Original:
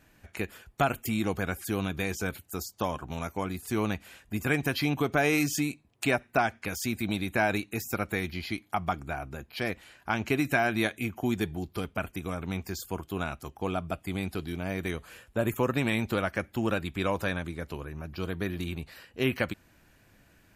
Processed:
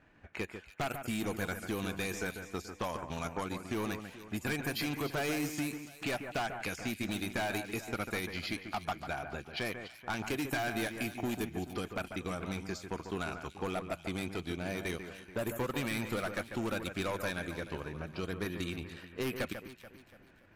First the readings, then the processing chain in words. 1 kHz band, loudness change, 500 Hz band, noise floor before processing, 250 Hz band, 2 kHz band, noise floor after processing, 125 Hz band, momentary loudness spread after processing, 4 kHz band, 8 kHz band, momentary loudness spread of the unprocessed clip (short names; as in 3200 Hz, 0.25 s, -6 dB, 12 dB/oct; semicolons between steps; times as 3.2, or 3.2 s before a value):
-6.5 dB, -6.0 dB, -6.0 dB, -62 dBFS, -6.0 dB, -6.0 dB, -58 dBFS, -7.5 dB, 7 LU, -3.0 dB, -4.5 dB, 11 LU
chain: low shelf 170 Hz -5.5 dB; de-esser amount 75%; low-pass opened by the level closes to 2000 Hz, open at -27.5 dBFS; transient shaper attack 0 dB, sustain -7 dB; high shelf 5800 Hz +9.5 dB; hard clip -27 dBFS, distortion -8 dB; compressor, threshold -32 dBFS, peak gain reduction 4 dB; on a send: echo with dull and thin repeats by turns 0.144 s, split 2400 Hz, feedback 64%, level -8 dB